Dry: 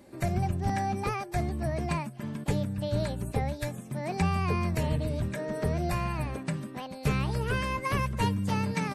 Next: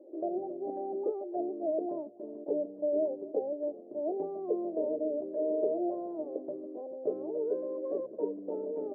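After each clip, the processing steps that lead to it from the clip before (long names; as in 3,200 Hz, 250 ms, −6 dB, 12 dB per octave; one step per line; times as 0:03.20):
elliptic band-pass filter 310–640 Hz, stop band 80 dB
level +5 dB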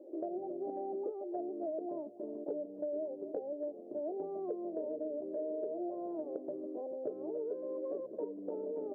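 downward compressor 5 to 1, threshold −37 dBFS, peak gain reduction 11 dB
level +1 dB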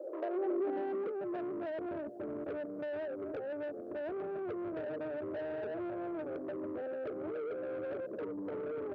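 in parallel at 0 dB: brickwall limiter −36.5 dBFS, peak gain reduction 10.5 dB
on the sum: soft clipping −36 dBFS, distortion −12 dB
high-pass filter sweep 520 Hz → 97 Hz, 0:00.15–0:01.81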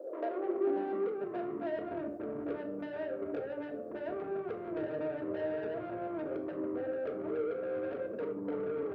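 rectangular room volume 720 cubic metres, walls furnished, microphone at 1.7 metres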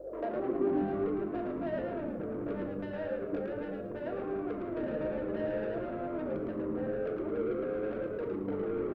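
mains hum 50 Hz, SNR 26 dB
on a send: echo with shifted repeats 110 ms, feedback 35%, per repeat −95 Hz, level −3 dB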